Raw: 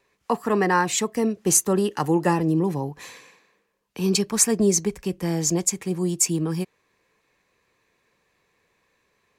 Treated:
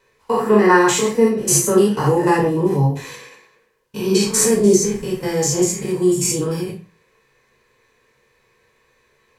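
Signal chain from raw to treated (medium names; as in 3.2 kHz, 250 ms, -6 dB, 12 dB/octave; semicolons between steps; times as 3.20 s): spectrogram pixelated in time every 100 ms; reverberation RT60 0.35 s, pre-delay 4 ms, DRR -3.5 dB; trim +3 dB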